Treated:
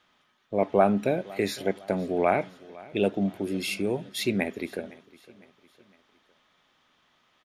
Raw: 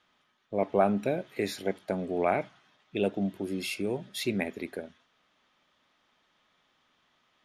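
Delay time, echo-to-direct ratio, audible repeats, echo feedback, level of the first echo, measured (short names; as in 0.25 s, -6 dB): 0.508 s, -20.5 dB, 3, 46%, -21.5 dB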